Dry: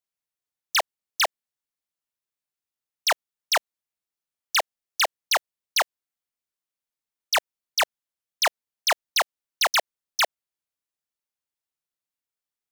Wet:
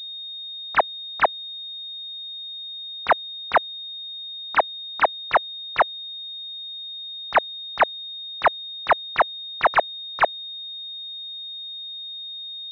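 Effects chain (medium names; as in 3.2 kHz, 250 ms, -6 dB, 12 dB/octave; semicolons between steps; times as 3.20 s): class-D stage that switches slowly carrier 3.7 kHz; trim +8 dB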